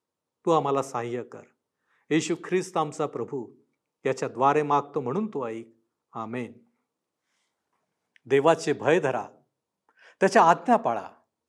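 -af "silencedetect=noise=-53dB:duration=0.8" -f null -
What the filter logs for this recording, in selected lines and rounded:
silence_start: 6.61
silence_end: 8.16 | silence_duration: 1.55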